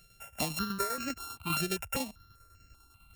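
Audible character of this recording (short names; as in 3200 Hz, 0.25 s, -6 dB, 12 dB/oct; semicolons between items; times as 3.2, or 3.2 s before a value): a buzz of ramps at a fixed pitch in blocks of 32 samples; tremolo saw down 10 Hz, depth 55%; notches that jump at a steady rate 5.1 Hz 270–3500 Hz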